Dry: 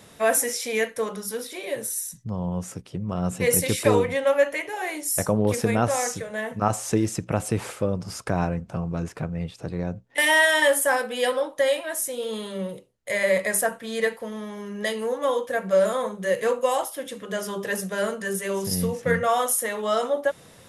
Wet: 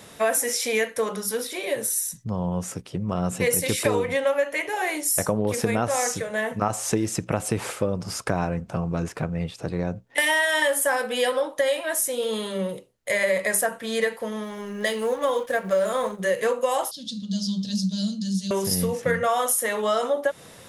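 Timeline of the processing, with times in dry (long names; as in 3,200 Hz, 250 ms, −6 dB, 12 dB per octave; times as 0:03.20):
0:14.43–0:16.20: mu-law and A-law mismatch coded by A
0:16.91–0:18.51: drawn EQ curve 110 Hz 0 dB, 210 Hz +9 dB, 400 Hz −28 dB, 630 Hz −22 dB, 1,100 Hz −30 dB, 2,000 Hz −30 dB, 4,300 Hz +13 dB, 12,000 Hz −23 dB
whole clip: low-shelf EQ 230 Hz −4 dB; downward compressor 4 to 1, threshold −24 dBFS; level +4.5 dB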